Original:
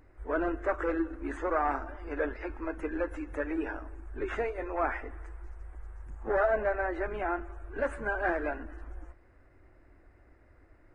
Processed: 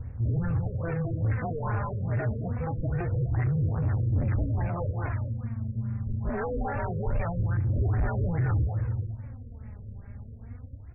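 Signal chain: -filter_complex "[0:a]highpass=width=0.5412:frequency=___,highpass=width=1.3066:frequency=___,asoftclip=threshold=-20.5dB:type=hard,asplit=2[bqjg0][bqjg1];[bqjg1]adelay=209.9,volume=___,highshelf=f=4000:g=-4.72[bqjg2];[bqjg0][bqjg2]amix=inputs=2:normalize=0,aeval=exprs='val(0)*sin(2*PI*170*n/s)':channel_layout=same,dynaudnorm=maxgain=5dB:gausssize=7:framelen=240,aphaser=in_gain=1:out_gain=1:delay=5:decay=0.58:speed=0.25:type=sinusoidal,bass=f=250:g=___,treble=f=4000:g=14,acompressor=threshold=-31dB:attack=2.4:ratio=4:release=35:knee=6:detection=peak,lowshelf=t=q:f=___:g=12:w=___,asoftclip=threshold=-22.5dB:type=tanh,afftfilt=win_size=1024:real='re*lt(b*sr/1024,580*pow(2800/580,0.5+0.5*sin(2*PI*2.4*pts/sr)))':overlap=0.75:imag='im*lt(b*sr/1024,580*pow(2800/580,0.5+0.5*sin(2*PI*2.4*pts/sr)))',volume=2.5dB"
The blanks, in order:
56, 56, -11dB, 10, 140, 1.5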